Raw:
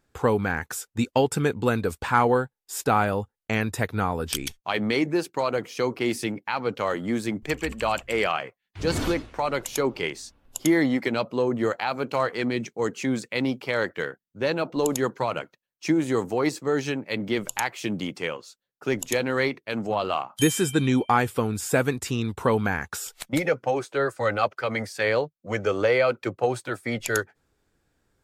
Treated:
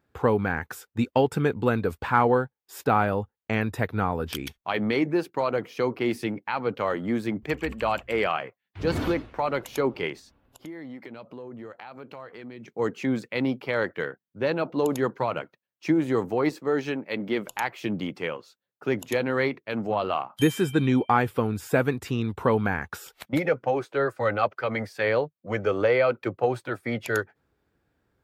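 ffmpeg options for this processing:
ffmpeg -i in.wav -filter_complex "[0:a]asettb=1/sr,asplit=3[link_01][link_02][link_03];[link_01]atrim=end=10.194[link_04];[link_02]atrim=start=10.19:end=12.68,asetpts=PTS-STARTPTS,afade=type=in:duration=0.004:curve=qsin,afade=type=out:start_time=2.486:duration=0.004:curve=qsin,acompressor=threshold=-40dB:ratio=4:attack=3.2:release=140:knee=1:detection=peak[link_05];[link_03]atrim=start=12.676[link_06];[link_04][link_05]acrossfade=duration=0.004:curve1=hsin:curve2=qsin[link_07];[link_07][link_06]acrossfade=duration=0.004:curve1=qsin:curve2=hsin,asettb=1/sr,asplit=3[link_08][link_09][link_10];[link_08]atrim=end=16.504[link_11];[link_09]atrim=start=16.5:end=17.64,asetpts=PTS-STARTPTS,afade=type=in:duration=0.004:curve=qsin,afade=type=out:start_time=1.136:duration=0.004:curve=qsin,equalizer=frequency=100:width_type=o:width=1:gain=-9.5[link_12];[link_10]atrim=start=17.636[link_13];[link_11][link_12]acrossfade=duration=0.004:curve1=hsin:curve2=qsin[link_14];[link_14][link_13]acrossfade=duration=0.004:curve1=qsin:curve2=hsin,highpass=50,equalizer=frequency=7900:width_type=o:width=1.6:gain=-13" out.wav

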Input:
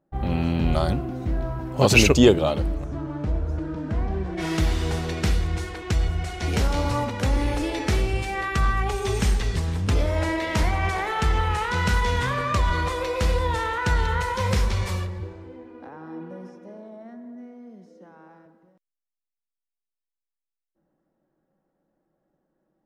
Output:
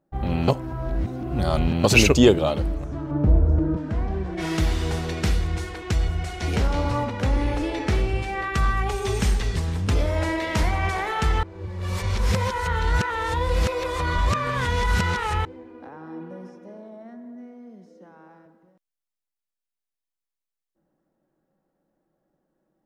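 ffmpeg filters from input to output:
ffmpeg -i in.wav -filter_complex "[0:a]asettb=1/sr,asplit=3[link_01][link_02][link_03];[link_01]atrim=end=3.114[link_04];[link_02]atrim=start=3.11:end=3.77,asetpts=PTS-STARTPTS,afade=type=in:duration=0.004:curve=qsin,afade=type=out:start_time=0.656:duration=0.004:curve=qsin,tiltshelf=frequency=1300:gain=8.5[link_05];[link_03]atrim=start=3.766[link_06];[link_04][link_05]acrossfade=duration=0.004:curve1=hsin:curve2=qsin[link_07];[link_07][link_06]acrossfade=duration=0.004:curve1=qsin:curve2=hsin,asettb=1/sr,asplit=3[link_08][link_09][link_10];[link_08]atrim=end=6.564[link_11];[link_09]atrim=start=6.56:end=8.54,asetpts=PTS-STARTPTS,afade=type=in:duration=0.004:curve=qsin,afade=type=out:start_time=1.976:duration=0.004:curve=qsin,aemphasis=mode=reproduction:type=cd[link_12];[link_10]atrim=start=8.536[link_13];[link_11][link_12]acrossfade=duration=0.004:curve1=hsin:curve2=qsin[link_14];[link_14][link_13]acrossfade=duration=0.004:curve1=qsin:curve2=hsin,asplit=5[link_15][link_16][link_17][link_18][link_19];[link_15]atrim=end=0.482[link_20];[link_16]atrim=start=0.478:end=1.842,asetpts=PTS-STARTPTS,areverse[link_21];[link_17]atrim=start=1.838:end=11.432[link_22];[link_18]atrim=start=11.428:end=15.452,asetpts=PTS-STARTPTS,areverse[link_23];[link_19]atrim=start=15.448[link_24];[link_20][link_21]acrossfade=duration=0.004:curve1=hsin:curve2=hsin[link_25];[link_25][link_22]acrossfade=duration=0.004:curve1=hsin:curve2=hsin[link_26];[link_26][link_23]acrossfade=duration=0.004:curve1=hsin:curve2=hsin[link_27];[link_27][link_24]acrossfade=duration=0.004:curve1=hsin:curve2=hsin" out.wav

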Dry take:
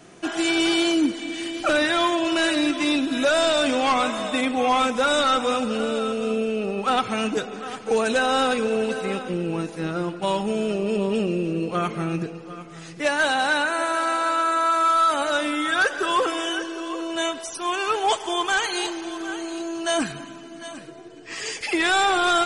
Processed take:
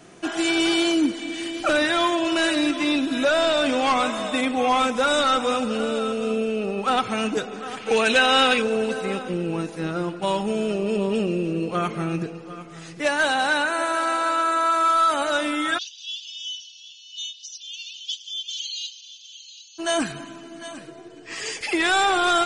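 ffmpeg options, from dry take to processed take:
ffmpeg -i in.wav -filter_complex "[0:a]asettb=1/sr,asplit=3[link_01][link_02][link_03];[link_01]atrim=end=2.714[link_04];[link_02]atrim=start=2.71:end=3.82,asetpts=PTS-STARTPTS,afade=type=in:duration=0.004:curve=qsin,afade=type=out:start_time=1.106:duration=0.004:curve=qsin,acrossover=split=4900[link_05][link_06];[link_06]acompressor=threshold=-40dB:ratio=4:attack=1:release=60[link_07];[link_05][link_07]amix=inputs=2:normalize=0[link_08];[link_03]atrim=start=3.816[link_09];[link_04][link_08]acrossfade=duration=0.004:curve1=hsin:curve2=qsin[link_10];[link_10][link_09]acrossfade=duration=0.004:curve1=qsin:curve2=hsin,asettb=1/sr,asplit=3[link_11][link_12][link_13];[link_11]atrim=end=7.774[link_14];[link_12]atrim=start=7.77:end=8.62,asetpts=PTS-STARTPTS,afade=type=in:duration=0.004:curve=qsin,afade=type=out:start_time=0.846:duration=0.004:curve=qsin,equalizer=frequency=2700:width=0.94:gain=10.5[link_15];[link_13]atrim=start=8.616[link_16];[link_14][link_15]acrossfade=duration=0.004:curve1=hsin:curve2=qsin[link_17];[link_17][link_16]acrossfade=duration=0.004:curve1=qsin:curve2=hsin,asplit=3[link_18][link_19][link_20];[link_18]afade=type=out:start_time=15.77:duration=0.02[link_21];[link_19]asuperpass=centerf=4400:order=12:qfactor=1.2,afade=type=in:start_time=15.77:duration=0.02,afade=type=out:start_time=19.78:duration=0.02[link_22];[link_20]afade=type=in:start_time=19.78:duration=0.02[link_23];[link_21][link_22][link_23]amix=inputs=3:normalize=0" out.wav

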